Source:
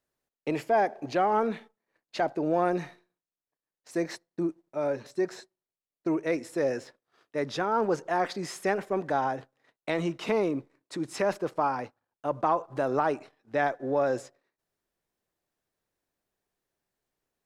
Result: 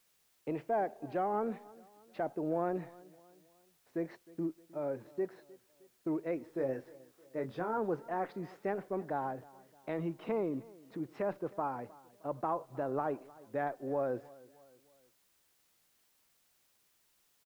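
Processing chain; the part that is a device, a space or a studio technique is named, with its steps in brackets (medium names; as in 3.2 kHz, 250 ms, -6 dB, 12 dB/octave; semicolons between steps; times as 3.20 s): cassette deck with a dirty head (tape spacing loss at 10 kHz 42 dB; wow and flutter; white noise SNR 34 dB); 6.46–7.78 s: doubling 23 ms -6.5 dB; feedback delay 310 ms, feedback 47%, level -22 dB; trim -5.5 dB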